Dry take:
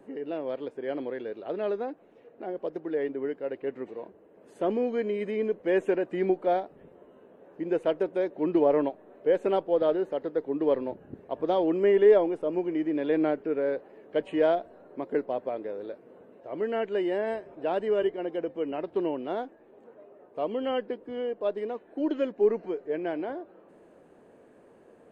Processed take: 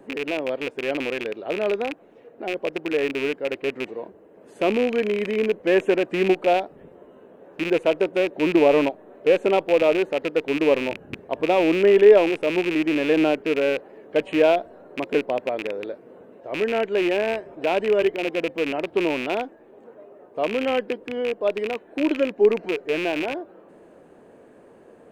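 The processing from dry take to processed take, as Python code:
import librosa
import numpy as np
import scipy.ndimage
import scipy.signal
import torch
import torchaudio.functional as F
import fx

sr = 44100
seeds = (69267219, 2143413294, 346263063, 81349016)

y = fx.rattle_buzz(x, sr, strikes_db=-43.0, level_db=-24.0)
y = F.gain(torch.from_numpy(y), 6.0).numpy()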